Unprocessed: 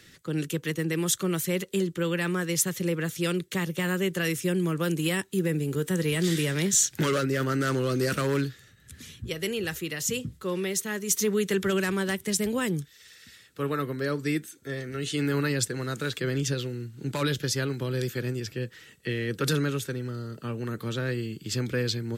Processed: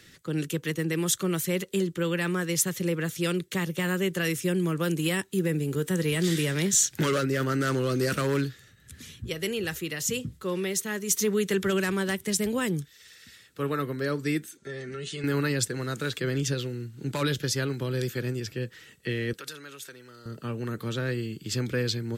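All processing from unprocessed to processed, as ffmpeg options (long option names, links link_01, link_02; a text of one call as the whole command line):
ffmpeg -i in.wav -filter_complex "[0:a]asettb=1/sr,asplit=3[link_01][link_02][link_03];[link_01]atrim=end=14.574[link_04];[link_02]atrim=start=14.57:end=15.24,asetpts=PTS-STARTPTS,afade=type=in:duration=0.004:curve=qsin,afade=type=out:start_time=0.666:duration=0.004:curve=qsin,lowpass=frequency=8800:width=0.5412,lowpass=frequency=8800:width=1.3066,aecho=1:1:5.1:0.66,atrim=end_sample=29547,acompressor=threshold=-34dB:ratio=3:attack=3.2:release=140:knee=1:detection=peak[link_05];[link_03]atrim=start=15.236[link_06];[link_04][link_05]acrossfade=duration=0.004:curve1=hsin:curve2=qsin[link_07];[link_07][link_06]acrossfade=duration=0.004:curve1=qsin:curve2=hsin,asettb=1/sr,asplit=3[link_08][link_09][link_10];[link_08]atrim=end=19.334[link_11];[link_09]atrim=start=19.33:end=20.26,asetpts=PTS-STARTPTS,afade=type=in:duration=0.004:curve=qsin,afade=type=out:start_time=0.926:duration=0.004:curve=qsin,acompressor=threshold=-35dB:ratio=2.5:attack=3.2:release=140:knee=1:detection=peak,highpass=frequency=1100:poles=1[link_12];[link_10]atrim=start=20.256[link_13];[link_11][link_12]acrossfade=duration=0.004:curve1=hsin:curve2=qsin[link_14];[link_14][link_13]acrossfade=duration=0.004:curve1=qsin:curve2=hsin" out.wav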